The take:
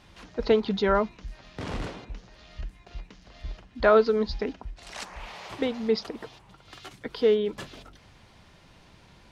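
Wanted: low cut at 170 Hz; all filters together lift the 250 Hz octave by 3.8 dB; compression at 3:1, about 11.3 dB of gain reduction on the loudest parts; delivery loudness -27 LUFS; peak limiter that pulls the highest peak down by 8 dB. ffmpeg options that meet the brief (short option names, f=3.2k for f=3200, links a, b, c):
-af "highpass=170,equalizer=f=250:t=o:g=6,acompressor=threshold=-29dB:ratio=3,volume=10dB,alimiter=limit=-15dB:level=0:latency=1"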